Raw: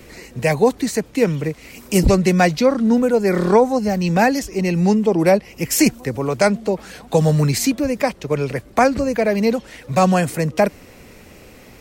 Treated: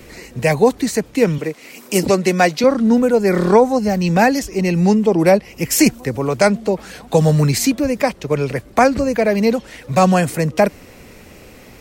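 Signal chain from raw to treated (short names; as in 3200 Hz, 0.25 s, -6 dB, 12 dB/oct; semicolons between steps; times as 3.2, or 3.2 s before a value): 1.38–2.64 HPF 240 Hz 12 dB/oct; gain +2 dB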